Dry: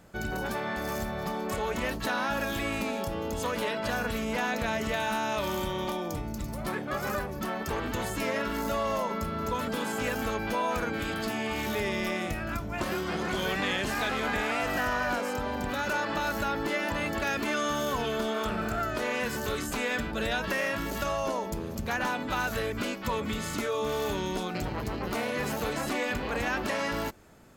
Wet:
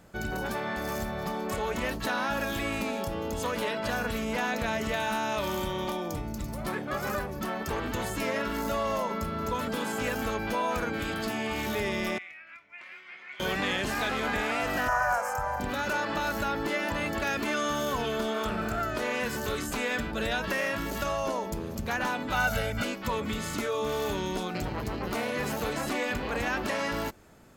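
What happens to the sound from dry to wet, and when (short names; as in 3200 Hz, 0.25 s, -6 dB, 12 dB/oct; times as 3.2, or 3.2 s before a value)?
12.18–13.4 band-pass 2200 Hz, Q 6.2
14.88–15.6 EQ curve 130 Hz 0 dB, 180 Hz -10 dB, 310 Hz -28 dB, 460 Hz -7 dB, 720 Hz +6 dB, 1600 Hz +3 dB, 3700 Hz -17 dB, 6100 Hz +3 dB
22.34–22.84 comb 1.4 ms, depth 93%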